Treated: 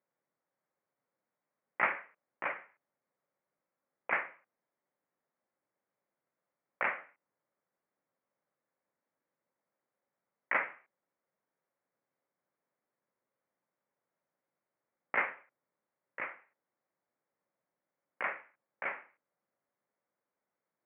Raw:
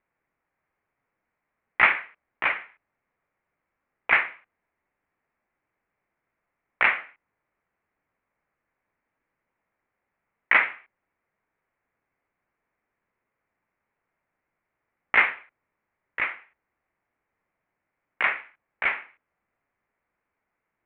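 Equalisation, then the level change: Gaussian blur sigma 4.2 samples; HPF 130 Hz 24 dB/oct; bell 550 Hz +7 dB 0.25 oct; -7.0 dB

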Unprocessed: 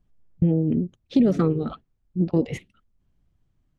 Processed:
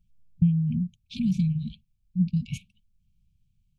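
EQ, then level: brick-wall FIR band-stop 230–2200 Hz; 0.0 dB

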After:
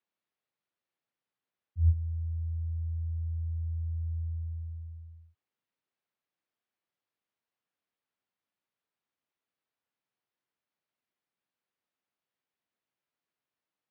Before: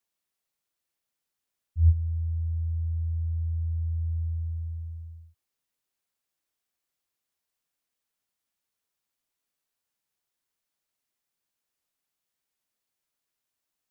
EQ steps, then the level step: HPF 110 Hz 12 dB/oct; dynamic EQ 210 Hz, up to +7 dB, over -49 dBFS, Q 0.82; air absorption 260 m; 0.0 dB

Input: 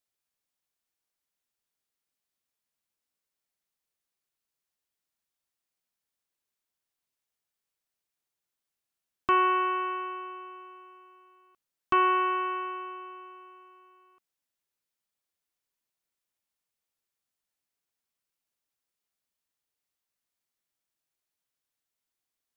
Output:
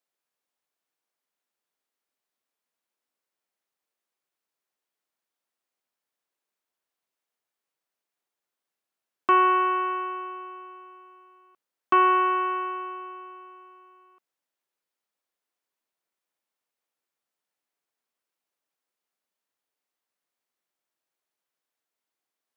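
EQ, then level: Bessel high-pass 340 Hz; high shelf 2200 Hz -9.5 dB; +6.5 dB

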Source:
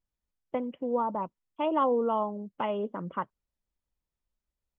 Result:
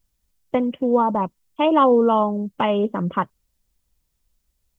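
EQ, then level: low shelf 250 Hz +9 dB; high shelf 2900 Hz +11.5 dB; +8.0 dB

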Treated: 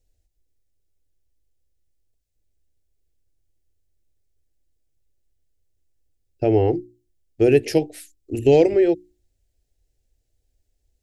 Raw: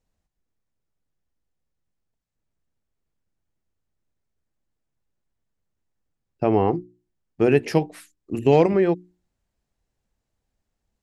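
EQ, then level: low shelf 260 Hz +11 dB; high shelf 3600 Hz +7.5 dB; fixed phaser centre 450 Hz, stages 4; 0.0 dB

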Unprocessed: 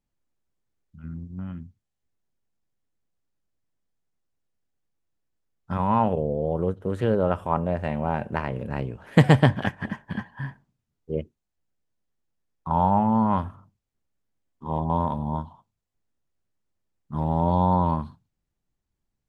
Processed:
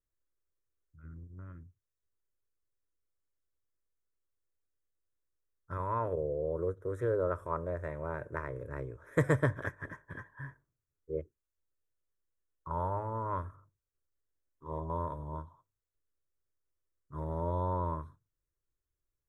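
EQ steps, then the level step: Butterworth band-stop 4500 Hz, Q 3.1; fixed phaser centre 780 Hz, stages 6; -6.0 dB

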